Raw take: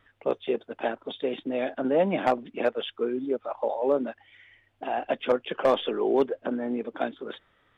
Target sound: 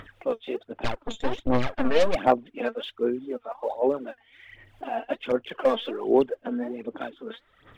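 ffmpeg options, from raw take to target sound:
-filter_complex "[0:a]acompressor=mode=upward:threshold=-37dB:ratio=2.5,asettb=1/sr,asplit=3[a][b][c];[a]atrim=end=0.844[d];[b]atrim=start=0.84:end=2.15,asetpts=PTS-STARTPTS,afade=t=in:d=0.004:c=qsin,afade=t=out:st=1.306:d=0.004:c=qsin,aeval=exprs='0.211*(cos(1*acos(clip(val(0)/0.211,-1,1)))-cos(1*PI/2))+0.0531*(cos(8*acos(clip(val(0)/0.211,-1,1)))-cos(8*PI/2))':c=same[e];[c]atrim=start=2.146[f];[d][e]acrossfade=d=0.004:c1=hsin:c2=qsin[g];[g][f]acrossfade=d=0.004:c1=qsin:c2=hsin,aphaser=in_gain=1:out_gain=1:delay=4.5:decay=0.65:speed=1.3:type=sinusoidal,volume=-4dB"

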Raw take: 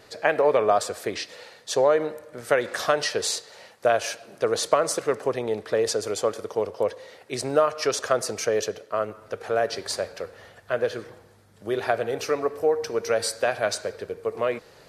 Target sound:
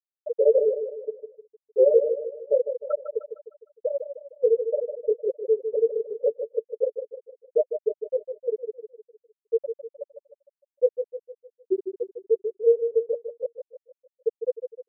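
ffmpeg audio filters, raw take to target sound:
-filter_complex "[0:a]aecho=1:1:2.2:0.66,asplit=2[a][b];[b]aeval=exprs='(mod(2.24*val(0)+1,2)-1)/2.24':c=same,volume=-4.5dB[c];[a][c]amix=inputs=2:normalize=0,flanger=delay=15.5:depth=6.8:speed=1.1,bandreject=f=50:t=h:w=6,bandreject=f=100:t=h:w=6,bandreject=f=150:t=h:w=6,bandreject=f=200:t=h:w=6,bandreject=f=250:t=h:w=6,bandreject=f=300:t=h:w=6,bandreject=f=350:t=h:w=6,bandreject=f=400:t=h:w=6,afftfilt=real='re*gte(hypot(re,im),1.12)':imag='im*gte(hypot(re,im),1.12)':win_size=1024:overlap=0.75,asplit=2[d][e];[e]aecho=0:1:153|306|459|612|765:0.376|0.169|0.0761|0.0342|0.0154[f];[d][f]amix=inputs=2:normalize=0,volume=-1dB"

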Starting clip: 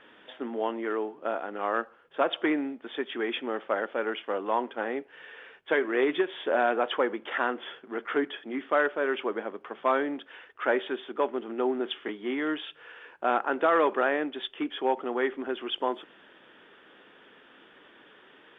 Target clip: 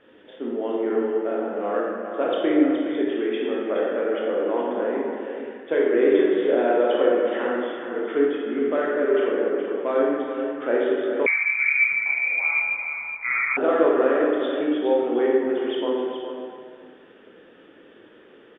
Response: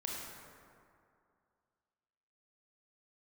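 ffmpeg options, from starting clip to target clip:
-filter_complex "[0:a]lowshelf=f=680:t=q:w=1.5:g=7,aecho=1:1:419:0.376[a];[1:a]atrim=start_sample=2205,asetrate=57330,aresample=44100[b];[a][b]afir=irnorm=-1:irlink=0,asettb=1/sr,asplit=3[c][d][e];[c]atrim=end=11.264[f];[d]atrim=start=11.26:end=13.57,asetpts=PTS-STARTPTS,afade=t=in:d=0.004:c=qsin,afade=t=out:st=2.306:d=0.004:c=qsin,lowpass=f=2.3k:t=q:w=0.5098,lowpass=f=2.3k:t=q:w=0.6013,lowpass=f=2.3k:t=q:w=0.9,lowpass=f=2.3k:t=q:w=2.563,afreqshift=-2700[g];[e]atrim=start=13.566[h];[f][g]acrossfade=d=0.004:c1=hsin:c2=qsin[i];[i][h]acrossfade=d=0.004:c1=qsin:c2=hsin"

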